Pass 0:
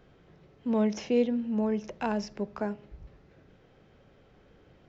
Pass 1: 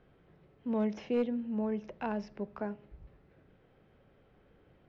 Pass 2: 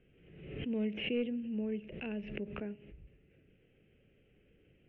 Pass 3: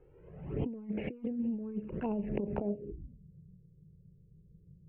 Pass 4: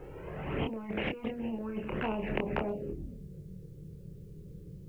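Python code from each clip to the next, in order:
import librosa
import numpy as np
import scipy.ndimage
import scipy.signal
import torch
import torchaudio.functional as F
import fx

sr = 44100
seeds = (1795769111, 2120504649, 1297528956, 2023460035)

y1 = scipy.signal.sosfilt(scipy.signal.butter(2, 3200.0, 'lowpass', fs=sr, output='sos'), x)
y1 = np.clip(10.0 ** (18.0 / 20.0) * y1, -1.0, 1.0) / 10.0 ** (18.0 / 20.0)
y1 = F.gain(torch.from_numpy(y1), -5.0).numpy()
y2 = fx.curve_eq(y1, sr, hz=(450.0, 990.0, 2800.0, 4800.0), db=(0, -19, 10, -28))
y2 = fx.pre_swell(y2, sr, db_per_s=57.0)
y2 = F.gain(torch.from_numpy(y2), -3.0).numpy()
y3 = fx.filter_sweep_lowpass(y2, sr, from_hz=960.0, to_hz=170.0, start_s=2.54, end_s=3.26, q=5.0)
y3 = fx.over_compress(y3, sr, threshold_db=-38.0, ratio=-0.5)
y3 = fx.env_flanger(y3, sr, rest_ms=2.4, full_db=-34.0)
y3 = F.gain(torch.from_numpy(y3), 5.0).numpy()
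y4 = fx.doubler(y3, sr, ms=27.0, db=-5)
y4 = fx.spectral_comp(y4, sr, ratio=2.0)
y4 = F.gain(torch.from_numpy(y4), 4.0).numpy()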